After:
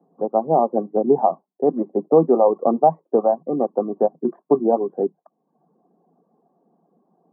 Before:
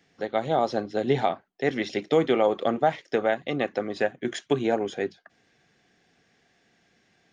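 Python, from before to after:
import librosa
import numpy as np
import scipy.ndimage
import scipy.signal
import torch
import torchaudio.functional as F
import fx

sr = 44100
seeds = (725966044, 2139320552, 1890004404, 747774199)

y = fx.dereverb_blind(x, sr, rt60_s=0.67)
y = scipy.signal.sosfilt(scipy.signal.cheby1(5, 1.0, [160.0, 1100.0], 'bandpass', fs=sr, output='sos'), y)
y = F.gain(torch.from_numpy(y), 8.0).numpy()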